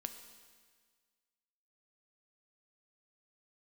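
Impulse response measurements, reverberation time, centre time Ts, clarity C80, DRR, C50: 1.6 s, 20 ms, 10.5 dB, 7.0 dB, 9.0 dB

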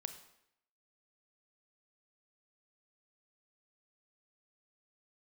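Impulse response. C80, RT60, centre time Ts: 12.5 dB, 0.75 s, 12 ms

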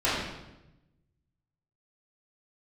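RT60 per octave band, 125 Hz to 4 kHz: 1.6 s, 1.2 s, 1.0 s, 0.90 s, 0.85 s, 0.80 s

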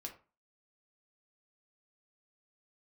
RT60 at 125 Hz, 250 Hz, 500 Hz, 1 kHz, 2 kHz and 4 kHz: 0.35 s, 0.35 s, 0.35 s, 0.35 s, 0.30 s, 0.20 s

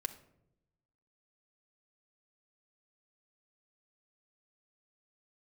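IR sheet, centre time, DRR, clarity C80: 6 ms, 5.0 dB, 17.0 dB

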